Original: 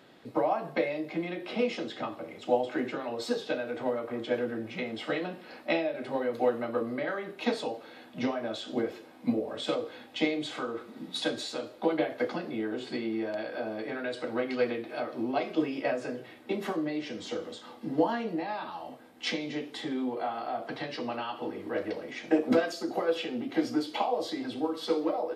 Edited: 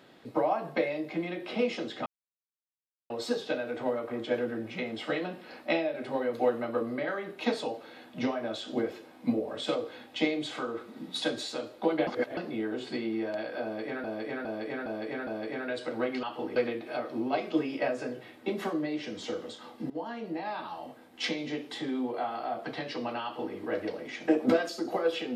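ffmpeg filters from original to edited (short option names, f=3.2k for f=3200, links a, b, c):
-filter_complex "[0:a]asplit=12[a][b][c][d][e][f][g][h][i][j][k][l];[a]atrim=end=2.06,asetpts=PTS-STARTPTS,afade=t=out:st=2.056:d=0.004:c=hsin[m];[b]atrim=start=2.06:end=3.1,asetpts=PTS-STARTPTS,volume=0[n];[c]atrim=start=3.1:end=12.072,asetpts=PTS-STARTPTS,afade=t=in:d=0.004:c=hsin[o];[d]atrim=start=12.068:end=12.372,asetpts=PTS-STARTPTS,areverse[p];[e]atrim=start=12.368:end=14.042[q];[f]atrim=start=13.628:end=14.042[r];[g]atrim=start=13.628:end=14.042[s];[h]atrim=start=13.628:end=14.042[t];[i]atrim=start=13.628:end=14.592[u];[j]atrim=start=21.258:end=21.592[v];[k]atrim=start=14.588:end=17.93,asetpts=PTS-STARTPTS,afade=t=out:st=3.338:d=0.004:c=hsin:silence=0.158489[w];[l]atrim=start=17.93,asetpts=PTS-STARTPTS,afade=t=in:d=0.65:silence=0.158489[x];[m][n][o]concat=n=3:v=0:a=1[y];[y][p]acrossfade=d=0.004:c1=hsin:c2=hsin[z];[z][q]acrossfade=d=0.004:c1=hsin:c2=hsin[aa];[aa][r]acrossfade=d=0.004:c1=hsin:c2=hsin[ab];[ab][s]acrossfade=d=0.004:c1=hsin:c2=hsin[ac];[ac][t]acrossfade=d=0.004:c1=hsin:c2=hsin[ad];[ad][u]acrossfade=d=0.004:c1=hsin:c2=hsin[ae];[ae][v]acrossfade=d=0.004:c1=hsin:c2=hsin[af];[w][x]concat=n=2:v=0:a=1[ag];[af][ag]acrossfade=d=0.004:c1=hsin:c2=hsin"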